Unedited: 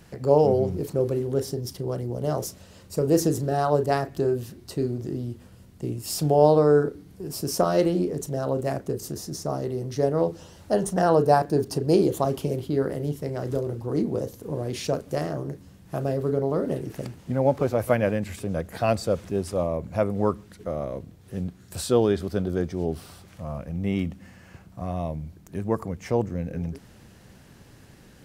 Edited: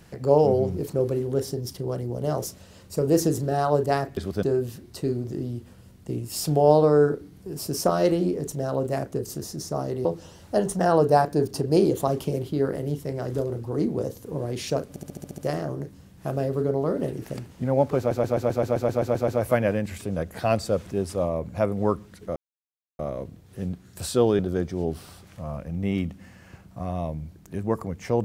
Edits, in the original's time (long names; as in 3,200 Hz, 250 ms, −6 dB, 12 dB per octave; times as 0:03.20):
0:09.79–0:10.22: remove
0:15.06: stutter 0.07 s, 8 plays
0:17.66: stutter 0.13 s, 11 plays
0:20.74: splice in silence 0.63 s
0:22.14–0:22.40: move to 0:04.17